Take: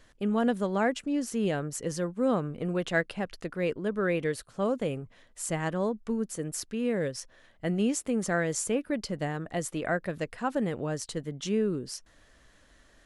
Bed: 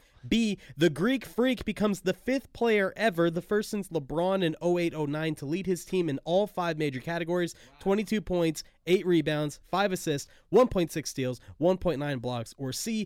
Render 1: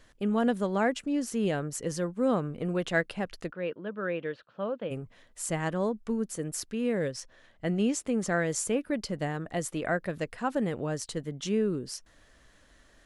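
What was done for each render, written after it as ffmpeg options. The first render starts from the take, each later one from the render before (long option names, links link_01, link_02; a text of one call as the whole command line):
ffmpeg -i in.wav -filter_complex "[0:a]asplit=3[link_01][link_02][link_03];[link_01]afade=type=out:start_time=3.5:duration=0.02[link_04];[link_02]highpass=240,equalizer=frequency=260:width_type=q:width=4:gain=-7,equalizer=frequency=400:width_type=q:width=4:gain=-8,equalizer=frequency=750:width_type=q:width=4:gain=-6,equalizer=frequency=1100:width_type=q:width=4:gain=-4,equalizer=frequency=2100:width_type=q:width=4:gain=-9,lowpass=frequency=3100:width=0.5412,lowpass=frequency=3100:width=1.3066,afade=type=in:start_time=3.5:duration=0.02,afade=type=out:start_time=4.9:duration=0.02[link_05];[link_03]afade=type=in:start_time=4.9:duration=0.02[link_06];[link_04][link_05][link_06]amix=inputs=3:normalize=0,asettb=1/sr,asplit=3[link_07][link_08][link_09];[link_07]atrim=end=7.104[link_10];[link_08]atrim=start=7.1:end=8.4,asetpts=PTS-STARTPTS,afade=type=in:duration=0.004:curve=qsin,afade=type=out:start_time=1.296:duration=0.004:curve=qsin,lowpass=9200[link_11];[link_09]atrim=start=8.396[link_12];[link_10][link_11]acrossfade=duration=0.004:curve1=hsin:curve2=qsin[link_13];[link_13][link_12]acrossfade=duration=0.004:curve1=qsin:curve2=hsin" out.wav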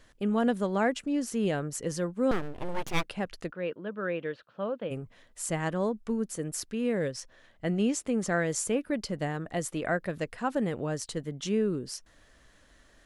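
ffmpeg -i in.wav -filter_complex "[0:a]asettb=1/sr,asplit=3[link_01][link_02][link_03];[link_01]atrim=end=2.314[link_04];[link_02]atrim=start=2.31:end=3.04,asetpts=PTS-STARTPTS,afade=type=in:duration=0.004:curve=qsin,afade=type=out:start_time=0.726:duration=0.004:curve=qsin,aeval=exprs='abs(val(0))':channel_layout=same[link_05];[link_03]atrim=start=3.036[link_06];[link_04][link_05]acrossfade=duration=0.004:curve1=hsin:curve2=qsin[link_07];[link_07][link_06]acrossfade=duration=0.004:curve1=qsin:curve2=hsin" out.wav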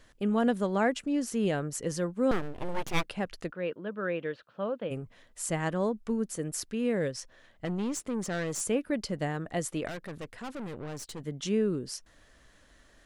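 ffmpeg -i in.wav -filter_complex "[0:a]asettb=1/sr,asplit=3[link_01][link_02][link_03];[link_01]atrim=end=7.654[link_04];[link_02]atrim=start=7.65:end=8.61,asetpts=PTS-STARTPTS,afade=type=in:duration=0.004:curve=qsin,afade=type=out:start_time=0.956:duration=0.004:curve=qsin,aeval=exprs='(tanh(25.1*val(0)+0.35)-tanh(0.35))/25.1':channel_layout=same[link_05];[link_03]atrim=start=8.606[link_06];[link_04][link_05]acrossfade=duration=0.004:curve1=hsin:curve2=qsin[link_07];[link_07][link_06]acrossfade=duration=0.004:curve1=qsin:curve2=hsin,asettb=1/sr,asplit=3[link_08][link_09][link_10];[link_08]atrim=end=9.874[link_11];[link_09]atrim=start=9.87:end=11.21,asetpts=PTS-STARTPTS,afade=type=in:duration=0.004:curve=qsin,afade=type=out:start_time=1.336:duration=0.004:curve=qsin,aeval=exprs='(tanh(63.1*val(0)+0.55)-tanh(0.55))/63.1':channel_layout=same[link_12];[link_10]atrim=start=11.206[link_13];[link_11][link_12]acrossfade=duration=0.004:curve1=hsin:curve2=qsin[link_14];[link_14][link_13]acrossfade=duration=0.004:curve1=qsin:curve2=hsin" out.wav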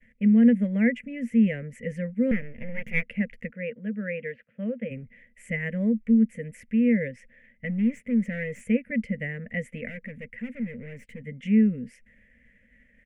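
ffmpeg -i in.wav -af "agate=range=-33dB:threshold=-56dB:ratio=3:detection=peak,firequalizer=gain_entry='entry(160,0);entry(230,14);entry(330,-25);entry(480,3);entry(790,-23);entry(1200,-22);entry(2000,13);entry(4000,-27);entry(8000,-18)':delay=0.05:min_phase=1" out.wav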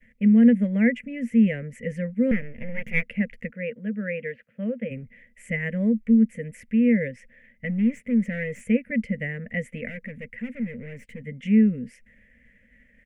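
ffmpeg -i in.wav -af "volume=2dB" out.wav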